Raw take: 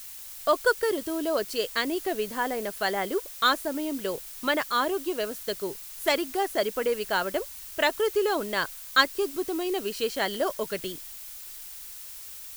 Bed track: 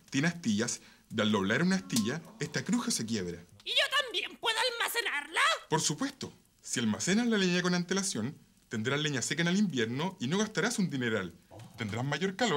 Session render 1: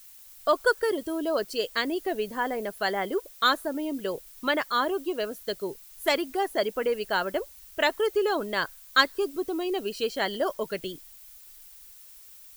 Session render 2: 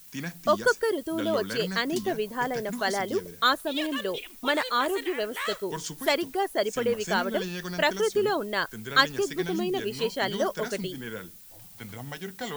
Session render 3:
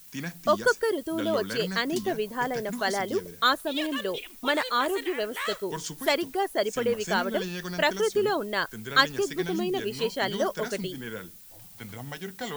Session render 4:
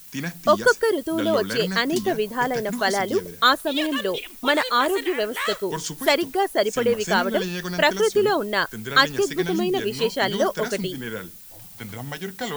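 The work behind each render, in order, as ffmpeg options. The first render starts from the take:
-af "afftdn=nr=10:nf=-42"
-filter_complex "[1:a]volume=0.501[s0];[0:a][s0]amix=inputs=2:normalize=0"
-af anull
-af "volume=1.88,alimiter=limit=0.794:level=0:latency=1"

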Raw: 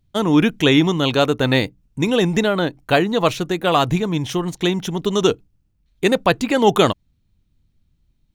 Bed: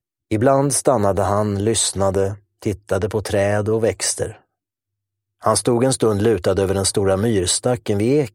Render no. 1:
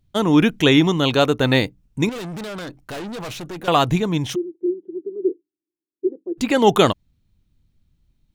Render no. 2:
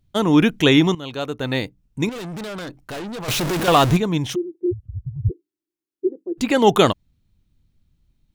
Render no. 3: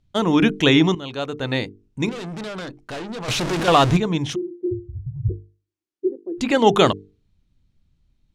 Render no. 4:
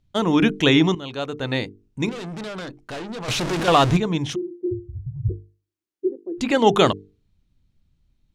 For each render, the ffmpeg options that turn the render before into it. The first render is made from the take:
-filter_complex "[0:a]asettb=1/sr,asplit=3[s0][s1][s2];[s0]atrim=end=2.094[s3];[s1]atrim=start=2.09:end=3.68,asetpts=PTS-STARTPTS,afade=t=in:d=0.004:c=qsin,afade=t=out:st=1.586:d=0.004:c=qsin,aeval=exprs='(tanh(28.2*val(0)+0.25)-tanh(0.25))/28.2':c=same[s4];[s2]atrim=start=3.676[s5];[s3][s4]acrossfade=d=0.004:c1=hsin:c2=qsin[s6];[s6][s5]acrossfade=d=0.004:c1=qsin:c2=hsin,asplit=3[s7][s8][s9];[s7]afade=t=out:st=4.34:d=0.02[s10];[s8]asuperpass=centerf=350:order=4:qfactor=5.2,afade=t=in:st=4.34:d=0.02,afade=t=out:st=6.37:d=0.02[s11];[s9]afade=t=in:st=6.37:d=0.02[s12];[s10][s11][s12]amix=inputs=3:normalize=0"
-filter_complex "[0:a]asettb=1/sr,asplit=3[s0][s1][s2];[s0]atrim=end=3.284[s3];[s1]atrim=start=3.28:end=3.97,asetpts=PTS-STARTPTS,afade=t=in:d=0.004:c=qsin,afade=t=out:st=0.686:d=0.004:c=qsin,aeval=exprs='val(0)+0.5*0.119*sgn(val(0))':c=same[s4];[s2]atrim=start=3.966[s5];[s3][s4]acrossfade=d=0.004:c1=hsin:c2=qsin[s6];[s6][s5]acrossfade=d=0.004:c1=qsin:c2=hsin,asplit=3[s7][s8][s9];[s7]afade=t=out:st=4.71:d=0.02[s10];[s8]afreqshift=-270,afade=t=in:st=4.71:d=0.02,afade=t=out:st=5.29:d=0.02[s11];[s9]afade=t=in:st=5.29:d=0.02[s12];[s10][s11][s12]amix=inputs=3:normalize=0,asplit=2[s13][s14];[s13]atrim=end=0.95,asetpts=PTS-STARTPTS,afade=t=out:st=0.946:d=0.004:c=hsin:silence=0.149624[s15];[s14]atrim=start=0.95,asetpts=PTS-STARTPTS,afade=t=in:d=1.46:silence=0.149624[s16];[s15][s16]concat=n=2:v=0:a=1"
-af "lowpass=7600,bandreject=f=50:t=h:w=6,bandreject=f=100:t=h:w=6,bandreject=f=150:t=h:w=6,bandreject=f=200:t=h:w=6,bandreject=f=250:t=h:w=6,bandreject=f=300:t=h:w=6,bandreject=f=350:t=h:w=6,bandreject=f=400:t=h:w=6,bandreject=f=450:t=h:w=6"
-af "volume=0.891"

